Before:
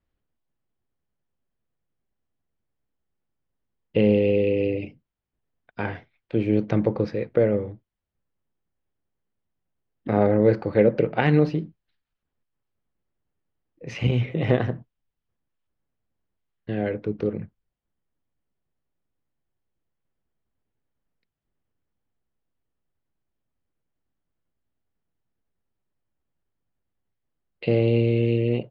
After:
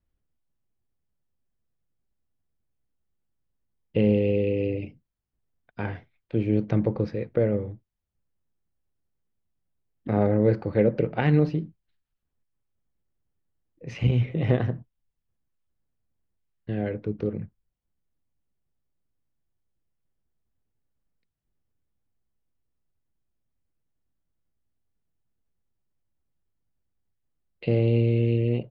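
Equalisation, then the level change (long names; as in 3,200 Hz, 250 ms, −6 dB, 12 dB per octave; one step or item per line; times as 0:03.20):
low-shelf EQ 190 Hz +8 dB
−5.0 dB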